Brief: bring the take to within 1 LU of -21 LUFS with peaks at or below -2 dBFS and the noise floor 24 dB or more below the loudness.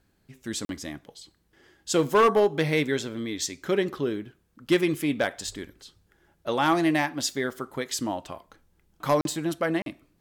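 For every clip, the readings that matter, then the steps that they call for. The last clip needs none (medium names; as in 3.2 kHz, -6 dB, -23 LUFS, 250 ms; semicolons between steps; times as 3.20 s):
clipped samples 0.5%; clipping level -14.0 dBFS; dropouts 3; longest dropout 42 ms; loudness -26.5 LUFS; peak level -14.0 dBFS; loudness target -21.0 LUFS
-> clip repair -14 dBFS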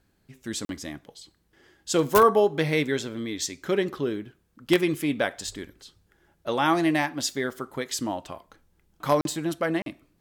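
clipped samples 0.0%; dropouts 3; longest dropout 42 ms
-> interpolate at 0.65/9.21/9.82 s, 42 ms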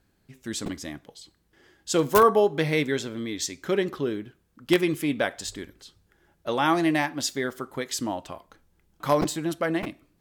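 dropouts 0; loudness -26.0 LUFS; peak level -5.0 dBFS; loudness target -21.0 LUFS
-> trim +5 dB; peak limiter -2 dBFS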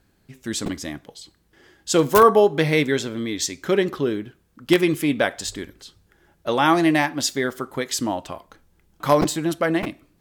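loudness -21.0 LUFS; peak level -2.0 dBFS; noise floor -63 dBFS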